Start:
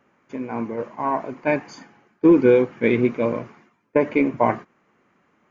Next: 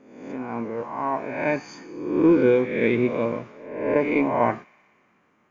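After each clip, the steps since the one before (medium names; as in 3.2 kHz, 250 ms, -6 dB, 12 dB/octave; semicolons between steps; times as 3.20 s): reverse spectral sustain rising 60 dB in 0.88 s; feedback echo behind a high-pass 61 ms, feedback 81%, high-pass 2.8 kHz, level -16.5 dB; trim -4 dB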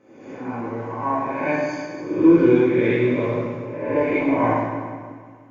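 reverberation RT60 1.8 s, pre-delay 4 ms, DRR -6 dB; trim -5 dB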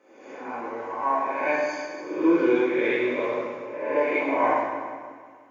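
high-pass 470 Hz 12 dB/octave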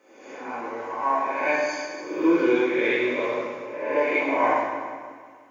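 treble shelf 2.6 kHz +7 dB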